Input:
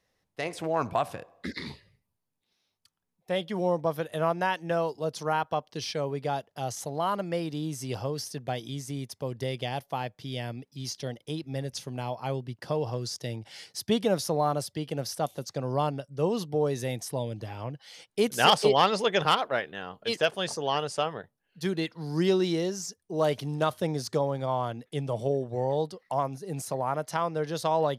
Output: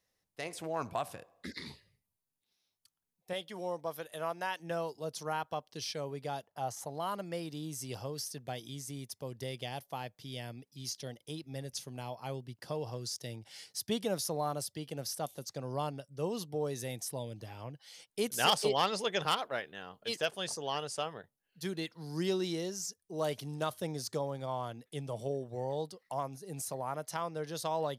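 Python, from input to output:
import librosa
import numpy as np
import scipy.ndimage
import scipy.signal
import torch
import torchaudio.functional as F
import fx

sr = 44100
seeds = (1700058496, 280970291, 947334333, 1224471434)

y = fx.low_shelf(x, sr, hz=260.0, db=-11.0, at=(3.33, 4.6))
y = fx.curve_eq(y, sr, hz=(440.0, 890.0, 3500.0), db=(0, 8, -5), at=(6.47, 6.9))
y = fx.high_shelf(y, sr, hz=5200.0, db=10.5)
y = F.gain(torch.from_numpy(y), -8.5).numpy()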